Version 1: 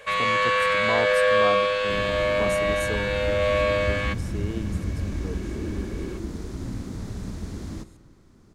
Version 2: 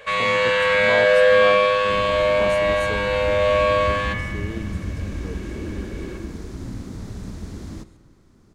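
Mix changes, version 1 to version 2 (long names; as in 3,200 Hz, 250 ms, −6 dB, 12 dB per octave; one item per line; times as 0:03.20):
speech: add high-shelf EQ 8,300 Hz −12 dB
first sound: send on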